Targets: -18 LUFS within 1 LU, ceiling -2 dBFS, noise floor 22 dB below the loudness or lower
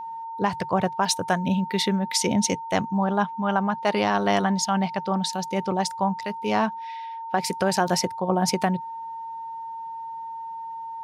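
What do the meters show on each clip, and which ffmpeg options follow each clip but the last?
steady tone 910 Hz; tone level -32 dBFS; loudness -25.5 LUFS; peak level -9.0 dBFS; loudness target -18.0 LUFS
-> -af "bandreject=f=910:w=30"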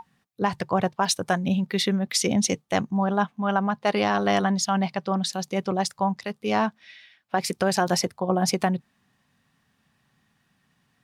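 steady tone not found; loudness -25.0 LUFS; peak level -10.0 dBFS; loudness target -18.0 LUFS
-> -af "volume=2.24"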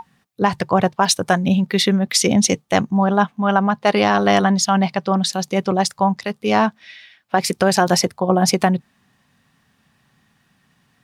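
loudness -18.0 LUFS; peak level -3.0 dBFS; noise floor -63 dBFS

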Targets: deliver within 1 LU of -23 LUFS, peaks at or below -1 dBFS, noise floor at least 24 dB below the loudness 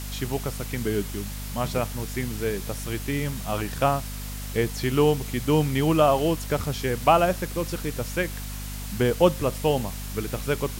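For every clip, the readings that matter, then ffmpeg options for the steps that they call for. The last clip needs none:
hum 50 Hz; highest harmonic 250 Hz; hum level -32 dBFS; noise floor -34 dBFS; noise floor target -50 dBFS; loudness -25.5 LUFS; peak level -5.0 dBFS; loudness target -23.0 LUFS
-> -af "bandreject=f=50:t=h:w=4,bandreject=f=100:t=h:w=4,bandreject=f=150:t=h:w=4,bandreject=f=200:t=h:w=4,bandreject=f=250:t=h:w=4"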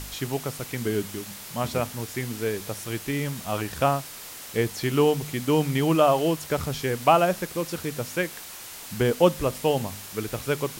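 hum not found; noise floor -41 dBFS; noise floor target -50 dBFS
-> -af "afftdn=nr=9:nf=-41"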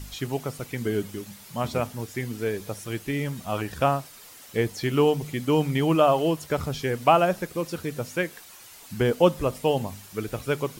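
noise floor -47 dBFS; noise floor target -50 dBFS
-> -af "afftdn=nr=6:nf=-47"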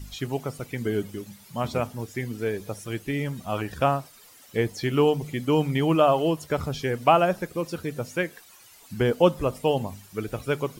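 noise floor -52 dBFS; loudness -26.0 LUFS; peak level -5.5 dBFS; loudness target -23.0 LUFS
-> -af "volume=1.41"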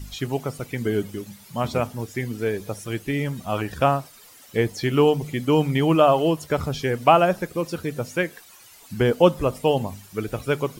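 loudness -23.0 LUFS; peak level -2.5 dBFS; noise floor -49 dBFS

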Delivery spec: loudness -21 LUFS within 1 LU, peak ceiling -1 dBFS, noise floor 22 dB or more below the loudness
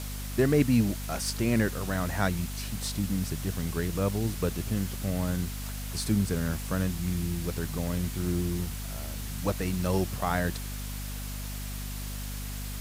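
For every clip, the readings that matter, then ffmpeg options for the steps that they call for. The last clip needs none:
hum 50 Hz; highest harmonic 250 Hz; hum level -34 dBFS; noise floor -36 dBFS; noise floor target -53 dBFS; loudness -30.5 LUFS; peak level -10.5 dBFS; loudness target -21.0 LUFS
-> -af "bandreject=f=50:t=h:w=6,bandreject=f=100:t=h:w=6,bandreject=f=150:t=h:w=6,bandreject=f=200:t=h:w=6,bandreject=f=250:t=h:w=6"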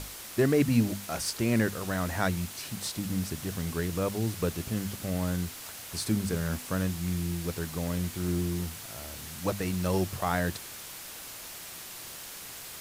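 hum not found; noise floor -43 dBFS; noise floor target -54 dBFS
-> -af "afftdn=nr=11:nf=-43"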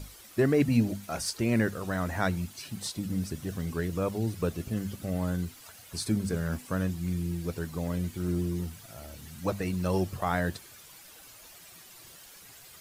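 noise floor -52 dBFS; noise floor target -53 dBFS
-> -af "afftdn=nr=6:nf=-52"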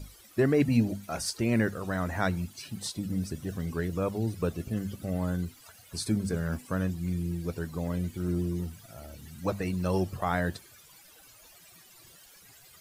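noise floor -55 dBFS; loudness -31.0 LUFS; peak level -12.0 dBFS; loudness target -21.0 LUFS
-> -af "volume=3.16"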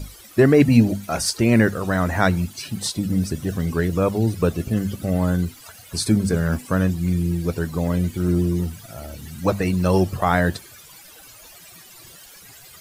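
loudness -21.0 LUFS; peak level -2.0 dBFS; noise floor -45 dBFS

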